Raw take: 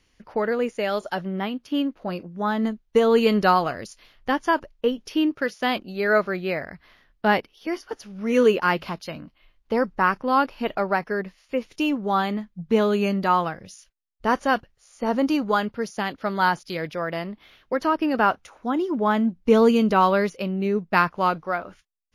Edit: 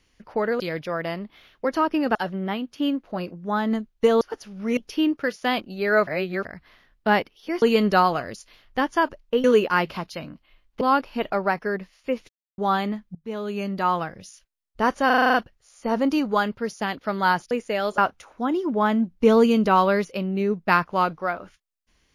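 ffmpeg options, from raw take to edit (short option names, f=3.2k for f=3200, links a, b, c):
-filter_complex "[0:a]asplit=22[a][b][c][d][e][f][g][h][i][j][k][l][m][n][o][p][q][r][s][t][u][v];[a]atrim=end=0.602[w];[b]atrim=start=16.678:end=18.232[x];[c]atrim=start=1.068:end=3.132[y];[d]atrim=start=7.798:end=8.362[z];[e]atrim=start=4.948:end=6.252[aa];[f]atrim=start=6.248:end=6.632,asetpts=PTS-STARTPTS,areverse[ab];[g]atrim=start=6.628:end=7.802[ac];[h]atrim=start=3.128:end=4.952[ad];[i]atrim=start=8.358:end=9.732[ae];[j]atrim=start=10.258:end=11.74,asetpts=PTS-STARTPTS,afade=t=out:st=1.478:d=0.004:c=hsin[af];[k]atrim=start=11.74:end=12.03,asetpts=PTS-STARTPTS,volume=0[ag];[l]atrim=start=12.03:end=12.6,asetpts=PTS-STARTPTS,afade=t=in:d=0.004:c=hsin,afade=t=out:st=0.566:d=0.004:c=hsin:silence=0.0891251[ah];[m]atrim=start=12.6:end=14.552,asetpts=PTS-STARTPTS,afade=t=in:d=0.97:silence=0.0891251[ai];[n]atrim=start=14.508:end=14.552[aj];[o]atrim=start=14.508:end=14.552[ak];[p]atrim=start=14.508:end=14.552[al];[q]atrim=start=14.508:end=14.552[am];[r]atrim=start=14.508:end=14.552[an];[s]atrim=start=14.508:end=14.552[ao];[t]atrim=start=14.508:end=16.682[ap];[u]atrim=start=0.598:end=1.072[aq];[v]atrim=start=18.228[ar];[w][x]acrossfade=d=0.004:c1=hsin:c2=hsin[as];[as][y]acrossfade=d=0.004:c1=hsin:c2=hsin[at];[at][z]acrossfade=d=0.004:c1=hsin:c2=hsin[au];[au][aa]acrossfade=d=0.004:c1=hsin:c2=hsin[av];[av][ab]acrossfade=d=0.004:c1=hsin:c2=hsin[aw];[aw][ac]acrossfade=d=0.004:c1=hsin:c2=hsin[ax];[ax][ad]acrossfade=d=0.004:c1=hsin:c2=hsin[ay];[ay][ae]acrossfade=d=0.004:c1=hsin:c2=hsin[az];[af][ag][ah][ai]concat=n=4:v=0:a=1[ba];[az][ba]acrossfade=d=0.004:c1=hsin:c2=hsin[bb];[bb][aj]acrossfade=d=0.004:c1=hsin:c2=hsin[bc];[bc][ak]acrossfade=d=0.004:c1=hsin:c2=hsin[bd];[bd][al]acrossfade=d=0.004:c1=hsin:c2=hsin[be];[be][am]acrossfade=d=0.004:c1=hsin:c2=hsin[bf];[bf][an]acrossfade=d=0.004:c1=hsin:c2=hsin[bg];[bg][ao]acrossfade=d=0.004:c1=hsin:c2=hsin[bh];[bh][ap]acrossfade=d=0.004:c1=hsin:c2=hsin[bi];[bi][aq]acrossfade=d=0.004:c1=hsin:c2=hsin[bj];[bj][ar]acrossfade=d=0.004:c1=hsin:c2=hsin"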